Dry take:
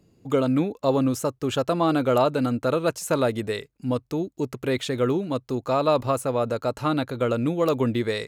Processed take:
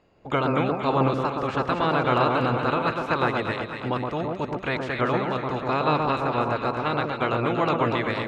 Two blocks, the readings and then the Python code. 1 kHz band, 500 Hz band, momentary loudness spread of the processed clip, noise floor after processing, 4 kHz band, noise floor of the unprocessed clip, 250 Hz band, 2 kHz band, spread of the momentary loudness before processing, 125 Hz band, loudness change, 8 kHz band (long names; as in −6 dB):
+5.0 dB, −2.5 dB, 6 LU, −37 dBFS, 0.0 dB, −62 dBFS, −3.0 dB, +7.0 dB, 7 LU, +0.5 dB, 0.0 dB, below −15 dB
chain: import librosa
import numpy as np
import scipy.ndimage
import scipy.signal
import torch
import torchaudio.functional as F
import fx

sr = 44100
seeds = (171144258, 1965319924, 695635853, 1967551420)

p1 = fx.spec_clip(x, sr, under_db=21)
p2 = scipy.signal.sosfilt(scipy.signal.butter(2, 2300.0, 'lowpass', fs=sr, output='sos'), p1)
p3 = p2 + fx.echo_alternate(p2, sr, ms=119, hz=1300.0, feedback_pct=75, wet_db=-3.0, dry=0)
y = p3 * librosa.db_to_amplitude(-1.5)